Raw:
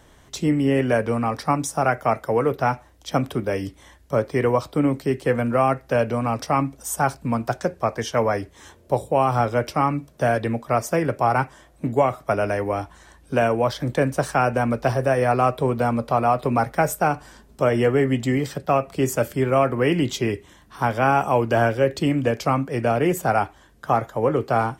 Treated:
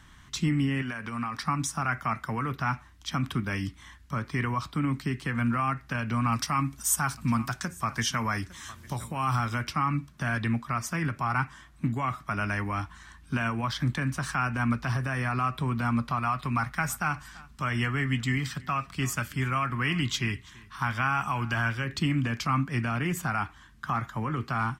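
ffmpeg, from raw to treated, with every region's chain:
-filter_complex "[0:a]asettb=1/sr,asplit=3[s0][s1][s2];[s0]atrim=end=0.824[s3];[s1]atrim=start=0.82:end=1.43,asetpts=PTS-STARTPTS,afade=t=in:d=0.004:c=qsin,afade=t=out:st=0.606:d=0.004:c=qsin,lowshelf=f=190:g=-10,acompressor=threshold=0.0562:ratio=12:attack=3.2:release=140:knee=1:detection=peak[s4];[s2]atrim=start=1.426[s5];[s3][s4]acrossfade=d=0.004:c1=hsin:c2=qsin[s6];[s6][s5]acrossfade=d=0.004:c1=qsin:c2=hsin,asettb=1/sr,asplit=3[s7][s8][s9];[s7]atrim=end=6.324[s10];[s8]atrim=start=6.32:end=9.64,asetpts=PTS-STARTPTS,afade=t=in:d=0.004:c=qsin,afade=t=out:st=3.316:d=0.004:c=qsin,highshelf=f=5800:g=10.5,acompressor=mode=upward:threshold=0.0141:ratio=2.5:attack=3.2:release=140:knee=2.83:detection=peak,aecho=1:1:855:0.0794,atrim=end_sample=146412[s11];[s9]atrim=start=9.636[s12];[s10][s11]acrossfade=d=0.004:c1=hsin:c2=qsin[s13];[s13][s12]acrossfade=d=0.004:c1=qsin:c2=hsin,asettb=1/sr,asplit=3[s14][s15][s16];[s14]atrim=end=16.194[s17];[s15]atrim=start=16.19:end=21.85,asetpts=PTS-STARTPTS,afade=t=in:d=0.004:c=qsin,afade=t=out:st=5.656:d=0.004:c=qsin,equalizer=f=300:t=o:w=2.5:g=-5.5,aecho=1:1:334:0.0668,atrim=end_sample=249606[s18];[s16]atrim=start=21.846[s19];[s17][s18]acrossfade=d=0.004:c1=hsin:c2=qsin[s20];[s20][s19]acrossfade=d=0.004:c1=qsin:c2=hsin,highshelf=f=7400:g=-10.5,alimiter=limit=0.188:level=0:latency=1:release=86,firequalizer=gain_entry='entry(210,0);entry(490,-21);entry(1100,2)':delay=0.05:min_phase=1"

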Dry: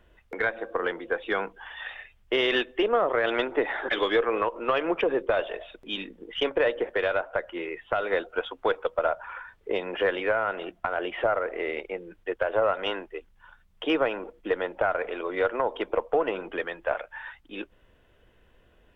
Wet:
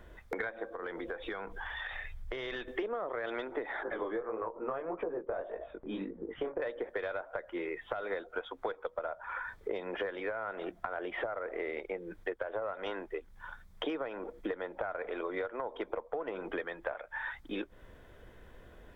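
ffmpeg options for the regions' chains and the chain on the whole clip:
-filter_complex "[0:a]asettb=1/sr,asplit=3[s0][s1][s2];[s0]atrim=end=0.674[s3];[s1]atrim=start=0.67:end=2.68,asetpts=PTS-STARTPTS,afade=t=in:d=0.004:c=qsin,afade=t=out:st=2.006:d=0.004:c=qsin,asubboost=boost=8:cutoff=120,acompressor=threshold=0.00794:ratio=4:attack=3.2:release=140:knee=1:detection=peak[s4];[s2]atrim=start=2.676[s5];[s3][s4]acrossfade=d=0.004:c1=hsin:c2=qsin[s6];[s6][s5]acrossfade=d=0.004:c1=qsin:c2=hsin,asettb=1/sr,asplit=3[s7][s8][s9];[s7]atrim=end=3.834[s10];[s8]atrim=start=3.83:end=6.62,asetpts=PTS-STARTPTS,afade=t=in:d=0.004:c=qsin,afade=t=out:st=2.786:d=0.004:c=qsin,lowpass=1200,flanger=delay=17:depth=7.1:speed=1.7[s11];[s9]atrim=start=6.616[s12];[s10][s11]acrossfade=d=0.004:c1=hsin:c2=qsin[s13];[s13][s12]acrossfade=d=0.004:c1=qsin:c2=hsin,equalizer=f=2800:t=o:w=0.27:g=-12,alimiter=limit=0.15:level=0:latency=1:release=430,acompressor=threshold=0.00891:ratio=6,volume=2.11"

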